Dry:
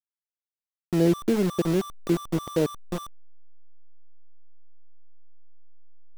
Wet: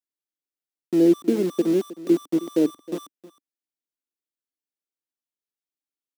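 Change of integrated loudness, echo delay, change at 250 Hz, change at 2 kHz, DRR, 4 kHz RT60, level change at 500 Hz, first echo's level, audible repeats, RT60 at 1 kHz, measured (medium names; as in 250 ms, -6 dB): +4.0 dB, 315 ms, +4.5 dB, -4.5 dB, no reverb, no reverb, +3.5 dB, -17.0 dB, 1, no reverb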